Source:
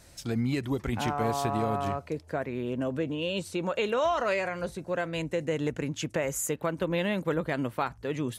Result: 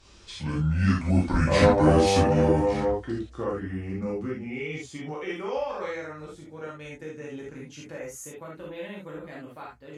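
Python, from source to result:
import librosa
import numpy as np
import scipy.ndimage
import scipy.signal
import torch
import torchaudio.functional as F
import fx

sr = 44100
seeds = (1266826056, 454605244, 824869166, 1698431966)

y = fx.speed_glide(x, sr, from_pct=61, to_pct=107)
y = fx.doppler_pass(y, sr, speed_mps=9, closest_m=5.7, pass_at_s=1.74)
y = fx.rev_gated(y, sr, seeds[0], gate_ms=100, shape='flat', drr_db=-5.5)
y = y * 10.0 ** (4.5 / 20.0)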